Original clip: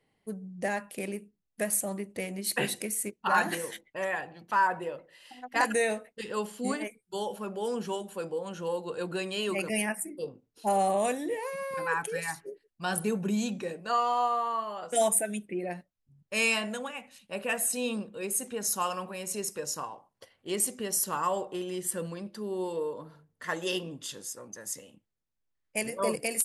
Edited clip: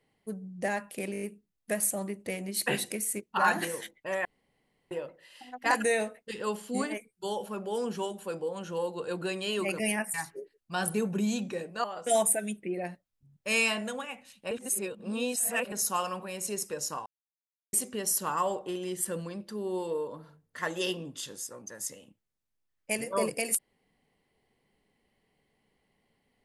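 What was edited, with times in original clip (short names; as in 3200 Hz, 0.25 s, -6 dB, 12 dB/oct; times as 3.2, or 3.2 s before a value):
1.12 stutter 0.02 s, 6 plays
4.15–4.81 room tone
10.04–12.24 cut
13.94–14.7 cut
17.37–18.58 reverse
19.92–20.59 mute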